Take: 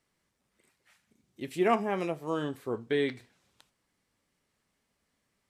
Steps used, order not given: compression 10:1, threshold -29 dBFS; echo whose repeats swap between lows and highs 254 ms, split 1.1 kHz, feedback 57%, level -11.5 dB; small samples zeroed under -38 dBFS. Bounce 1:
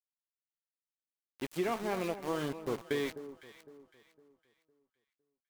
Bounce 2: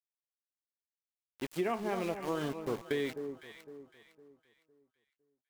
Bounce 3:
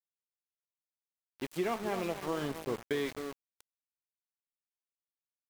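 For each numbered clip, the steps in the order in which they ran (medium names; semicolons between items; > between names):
compression > small samples zeroed > echo whose repeats swap between lows and highs; small samples zeroed > echo whose repeats swap between lows and highs > compression; echo whose repeats swap between lows and highs > compression > small samples zeroed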